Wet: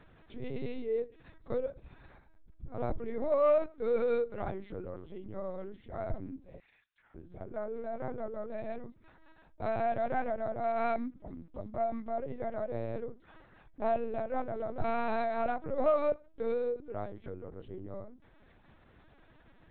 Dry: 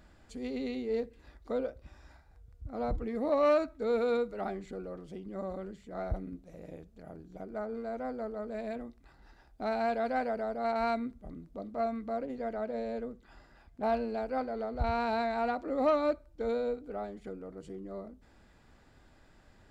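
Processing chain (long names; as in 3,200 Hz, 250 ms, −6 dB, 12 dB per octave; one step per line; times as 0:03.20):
0:06.59–0:07.15: high-pass filter 1,400 Hz 24 dB per octave
linear-prediction vocoder at 8 kHz pitch kept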